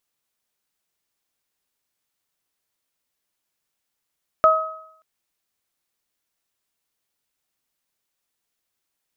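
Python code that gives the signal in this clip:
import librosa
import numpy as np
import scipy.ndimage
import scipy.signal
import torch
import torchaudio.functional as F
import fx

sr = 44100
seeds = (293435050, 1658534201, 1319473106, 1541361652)

y = fx.additive(sr, length_s=0.58, hz=636.0, level_db=-13.0, upper_db=(3.0,), decay_s=0.68, upper_decays_s=(0.71,))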